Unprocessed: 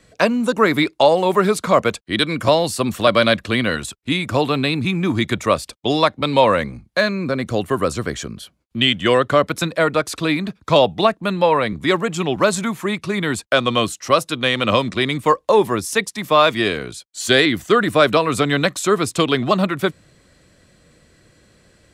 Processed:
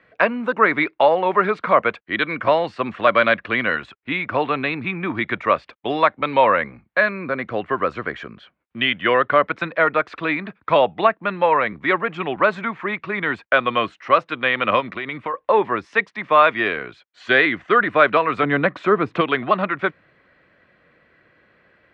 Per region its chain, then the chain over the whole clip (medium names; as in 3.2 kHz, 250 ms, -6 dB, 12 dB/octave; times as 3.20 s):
14.80–15.34 s: band-stop 1.7 kHz, Q 22 + compression 12:1, threshold -20 dBFS
18.43–19.21 s: high-pass 130 Hz + tilt EQ -3 dB/octave + upward compressor, threshold -17 dBFS
whole clip: low-pass 2.1 kHz 24 dB/octave; tilt EQ +4 dB/octave; trim +1 dB